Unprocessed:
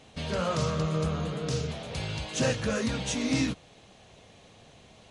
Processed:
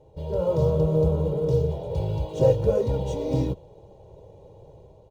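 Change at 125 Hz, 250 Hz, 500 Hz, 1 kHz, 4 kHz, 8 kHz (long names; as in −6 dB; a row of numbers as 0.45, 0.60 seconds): +7.0 dB, +1.0 dB, +10.0 dB, −1.0 dB, −12.0 dB, below −10 dB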